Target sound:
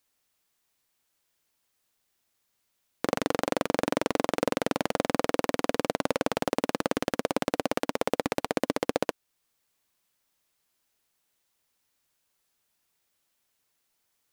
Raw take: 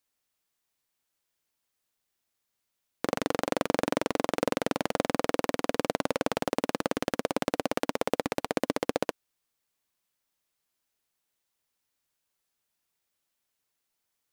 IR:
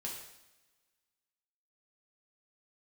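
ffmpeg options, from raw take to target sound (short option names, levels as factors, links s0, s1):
-af "alimiter=limit=0.2:level=0:latency=1:release=423,volume=1.88"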